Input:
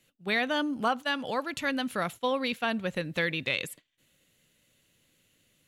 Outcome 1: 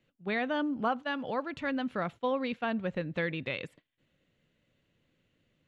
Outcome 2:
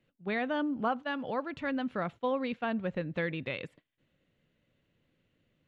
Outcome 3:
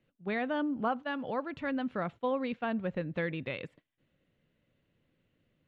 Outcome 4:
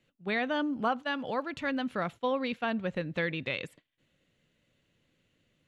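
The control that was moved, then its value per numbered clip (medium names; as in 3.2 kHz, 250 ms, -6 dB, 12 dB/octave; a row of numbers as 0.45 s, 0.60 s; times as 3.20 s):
tape spacing loss, at 10 kHz: 29 dB, 37 dB, 45 dB, 20 dB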